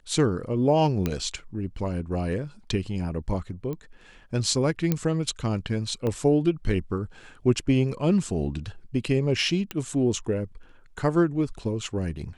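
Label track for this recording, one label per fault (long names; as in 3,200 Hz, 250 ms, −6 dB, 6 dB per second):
1.060000	1.060000	click −12 dBFS
3.730000	3.730000	click −22 dBFS
4.920000	4.920000	click −10 dBFS
6.070000	6.070000	click −17 dBFS
9.710000	9.710000	click −15 dBFS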